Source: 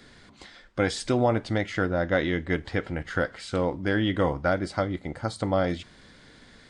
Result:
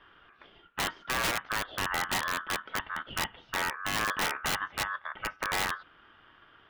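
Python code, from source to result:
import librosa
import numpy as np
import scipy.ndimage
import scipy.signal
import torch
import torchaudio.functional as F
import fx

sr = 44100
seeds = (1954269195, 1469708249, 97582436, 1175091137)

y = scipy.signal.sosfilt(scipy.signal.butter(4, 2000.0, 'lowpass', fs=sr, output='sos'), x)
y = (np.mod(10.0 ** (18.5 / 20.0) * y + 1.0, 2.0) - 1.0) / 10.0 ** (18.5 / 20.0)
y = y * np.sin(2.0 * np.pi * 1400.0 * np.arange(len(y)) / sr)
y = y * 10.0 ** (-2.0 / 20.0)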